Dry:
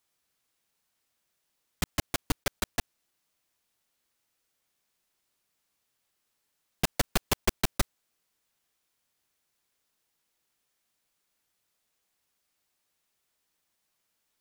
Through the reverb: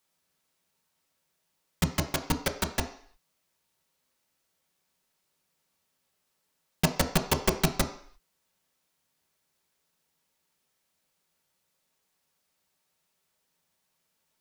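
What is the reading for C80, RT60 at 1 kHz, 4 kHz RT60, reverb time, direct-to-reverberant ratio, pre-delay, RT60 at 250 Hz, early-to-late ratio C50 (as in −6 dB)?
14.5 dB, 0.55 s, 0.60 s, 0.55 s, 3.5 dB, 3 ms, 0.50 s, 11.0 dB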